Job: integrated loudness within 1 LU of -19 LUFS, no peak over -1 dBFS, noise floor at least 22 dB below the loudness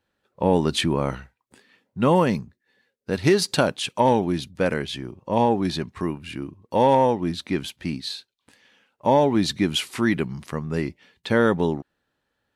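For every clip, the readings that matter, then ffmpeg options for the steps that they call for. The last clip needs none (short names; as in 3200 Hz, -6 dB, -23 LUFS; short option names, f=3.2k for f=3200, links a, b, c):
loudness -23.0 LUFS; peak -6.0 dBFS; loudness target -19.0 LUFS
-> -af "volume=4dB"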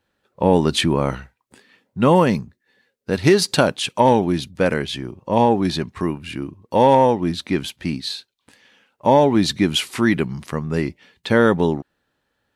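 loudness -19.0 LUFS; peak -2.0 dBFS; noise floor -74 dBFS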